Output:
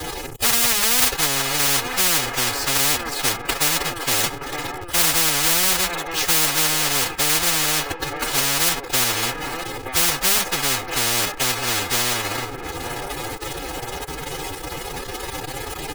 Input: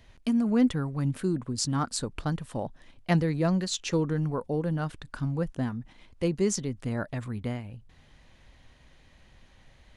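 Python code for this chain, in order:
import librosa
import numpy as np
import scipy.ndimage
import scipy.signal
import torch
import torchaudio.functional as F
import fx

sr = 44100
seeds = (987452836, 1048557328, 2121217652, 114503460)

y = fx.band_shelf(x, sr, hz=2800.0, db=-11.5, octaves=2.9)
y = fx.env_lowpass_down(y, sr, base_hz=610.0, full_db=-26.5)
y = fx.quant_companded(y, sr, bits=4)
y = fx.stretch_vocoder(y, sr, factor=1.6)
y = y + 0.99 * np.pad(y, (int(2.4 * sr / 1000.0), 0))[:len(y)]
y = fx.echo_wet_bandpass(y, sr, ms=920, feedback_pct=50, hz=1100.0, wet_db=-17.0)
y = fx.spectral_comp(y, sr, ratio=10.0)
y = y * 10.0 ** (8.0 / 20.0)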